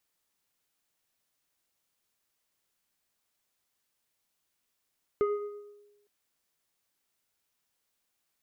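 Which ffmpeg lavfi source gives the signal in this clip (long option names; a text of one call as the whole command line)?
ffmpeg -f lavfi -i "aevalsrc='0.0794*pow(10,-3*t/1.09)*sin(2*PI*412*t+0.65*clip(1-t/0.64,0,1)*sin(2*PI*2.02*412*t))':duration=0.86:sample_rate=44100" out.wav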